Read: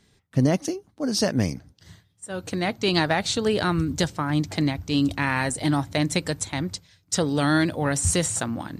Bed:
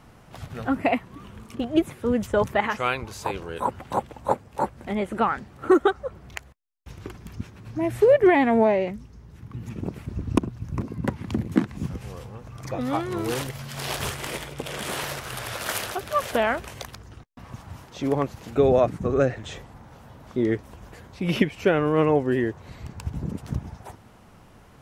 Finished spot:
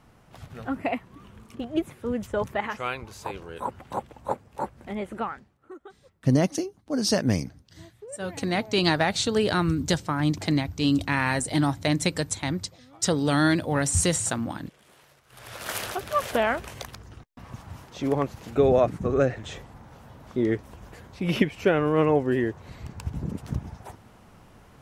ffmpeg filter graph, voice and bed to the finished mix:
-filter_complex "[0:a]adelay=5900,volume=-0.5dB[a];[1:a]volume=20dB,afade=t=out:st=5.1:d=0.49:silence=0.0891251,afade=t=in:st=15.28:d=0.6:silence=0.0530884[b];[a][b]amix=inputs=2:normalize=0"

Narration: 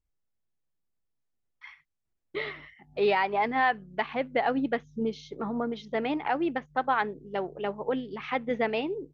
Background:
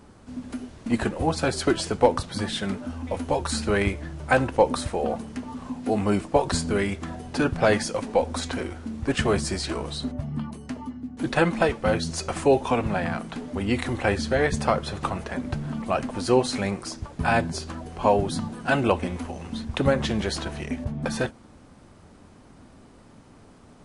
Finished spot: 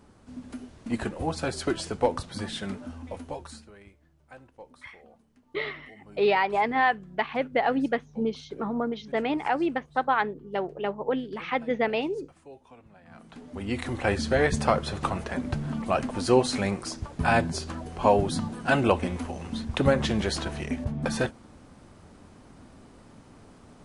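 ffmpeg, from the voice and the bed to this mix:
-filter_complex "[0:a]adelay=3200,volume=2dB[a];[1:a]volume=22.5dB,afade=t=out:st=2.84:d=0.87:silence=0.0707946,afade=t=in:st=13.05:d=1.28:silence=0.0398107[b];[a][b]amix=inputs=2:normalize=0"

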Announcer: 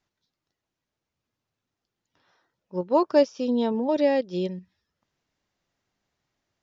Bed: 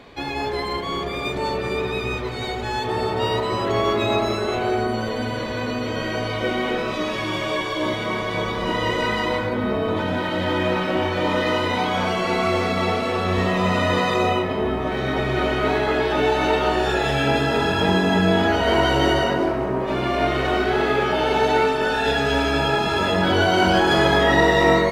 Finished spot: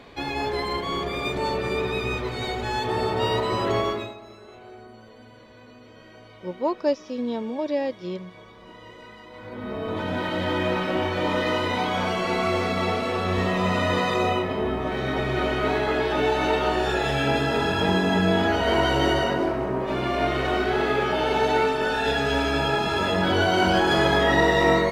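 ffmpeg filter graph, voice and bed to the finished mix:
-filter_complex "[0:a]adelay=3700,volume=-4dB[a];[1:a]volume=18dB,afade=t=out:st=3.72:d=0.42:silence=0.0891251,afade=t=in:st=9.32:d=0.91:silence=0.105925[b];[a][b]amix=inputs=2:normalize=0"

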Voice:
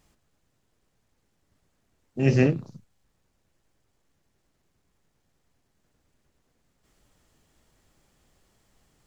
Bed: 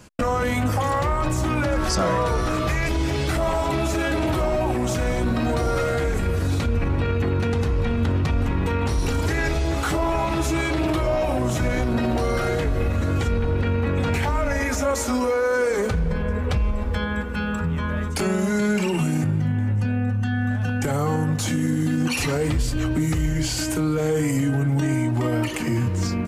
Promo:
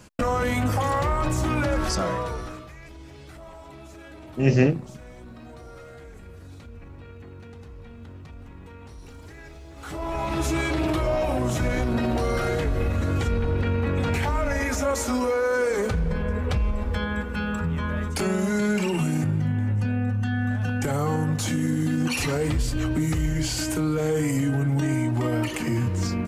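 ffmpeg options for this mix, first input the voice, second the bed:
-filter_complex "[0:a]adelay=2200,volume=1.5dB[a];[1:a]volume=17.5dB,afade=t=out:st=1.73:d=0.94:silence=0.105925,afade=t=in:st=9.75:d=0.7:silence=0.112202[b];[a][b]amix=inputs=2:normalize=0"

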